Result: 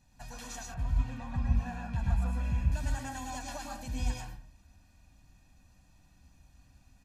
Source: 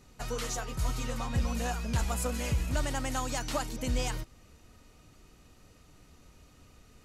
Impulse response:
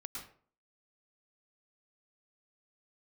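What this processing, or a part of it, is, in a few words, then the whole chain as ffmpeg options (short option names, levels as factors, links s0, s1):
microphone above a desk: -filter_complex "[0:a]aecho=1:1:1.2:0.86[s0];[1:a]atrim=start_sample=2205[s1];[s0][s1]afir=irnorm=-1:irlink=0,asettb=1/sr,asplit=3[s2][s3][s4];[s2]atrim=end=0.744[s5];[s3]atrim=start=0.74:end=2.72,asetpts=PTS-STARTPTS,afade=t=in:d=0.004:c=qsin,afade=t=out:st=1.976:d=0.004:c=qsin,bass=f=250:g=4,treble=f=4000:g=-14[s6];[s4]atrim=start=2.716[s7];[s5][s6]acrossfade=d=0.004:c1=hsin:c2=qsin[s8];[s8][s7]acrossfade=d=0.004:c1=qsin:c2=hsin,volume=0.473"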